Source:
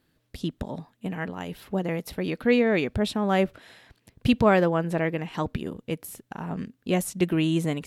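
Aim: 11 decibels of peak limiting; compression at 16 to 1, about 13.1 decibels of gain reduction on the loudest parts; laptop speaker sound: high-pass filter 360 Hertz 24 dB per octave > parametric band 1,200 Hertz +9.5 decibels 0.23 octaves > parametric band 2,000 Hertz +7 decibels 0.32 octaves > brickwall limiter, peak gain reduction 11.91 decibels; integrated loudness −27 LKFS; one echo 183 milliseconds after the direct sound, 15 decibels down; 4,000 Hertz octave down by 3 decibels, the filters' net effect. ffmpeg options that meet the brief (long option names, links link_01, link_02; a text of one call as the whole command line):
ffmpeg -i in.wav -af "equalizer=frequency=4000:width_type=o:gain=-5,acompressor=threshold=-28dB:ratio=16,alimiter=level_in=6.5dB:limit=-24dB:level=0:latency=1,volume=-6.5dB,highpass=frequency=360:width=0.5412,highpass=frequency=360:width=1.3066,equalizer=frequency=1200:width_type=o:width=0.23:gain=9.5,equalizer=frequency=2000:width_type=o:width=0.32:gain=7,aecho=1:1:183:0.178,volume=22.5dB,alimiter=limit=-17dB:level=0:latency=1" out.wav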